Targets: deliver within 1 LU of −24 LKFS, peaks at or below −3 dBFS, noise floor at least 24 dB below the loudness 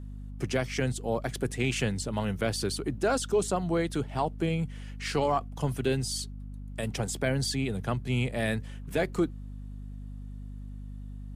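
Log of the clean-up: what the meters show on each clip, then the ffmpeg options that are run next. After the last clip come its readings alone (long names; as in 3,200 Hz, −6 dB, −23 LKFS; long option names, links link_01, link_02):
mains hum 50 Hz; hum harmonics up to 250 Hz; level of the hum −37 dBFS; integrated loudness −30.5 LKFS; sample peak −16.5 dBFS; target loudness −24.0 LKFS
→ -af "bandreject=frequency=50:width_type=h:width=6,bandreject=frequency=100:width_type=h:width=6,bandreject=frequency=150:width_type=h:width=6,bandreject=frequency=200:width_type=h:width=6,bandreject=frequency=250:width_type=h:width=6"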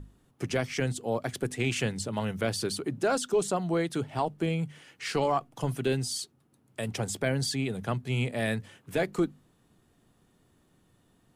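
mains hum none found; integrated loudness −30.5 LKFS; sample peak −16.5 dBFS; target loudness −24.0 LKFS
→ -af "volume=6.5dB"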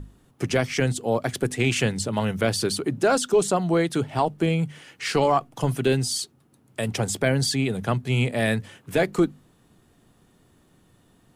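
integrated loudness −24.0 LKFS; sample peak −10.0 dBFS; background noise floor −60 dBFS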